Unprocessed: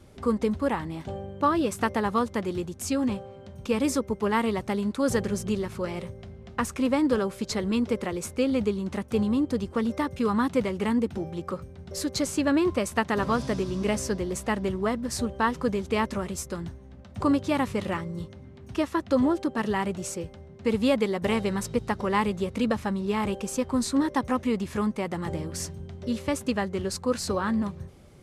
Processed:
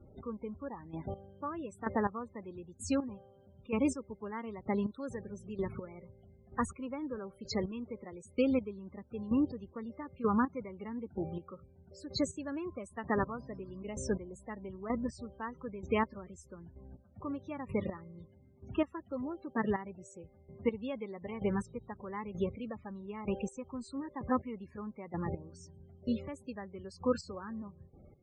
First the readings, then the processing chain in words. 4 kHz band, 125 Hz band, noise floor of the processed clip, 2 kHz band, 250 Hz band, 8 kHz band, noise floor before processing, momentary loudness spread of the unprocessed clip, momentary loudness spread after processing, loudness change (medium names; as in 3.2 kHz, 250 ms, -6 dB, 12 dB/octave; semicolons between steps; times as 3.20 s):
-13.5 dB, -10.0 dB, -61 dBFS, -11.5 dB, -10.0 dB, -15.0 dB, -47 dBFS, 11 LU, 17 LU, -10.0 dB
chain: loudest bins only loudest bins 32; trance gate "xx......." 145 bpm -12 dB; trim -4 dB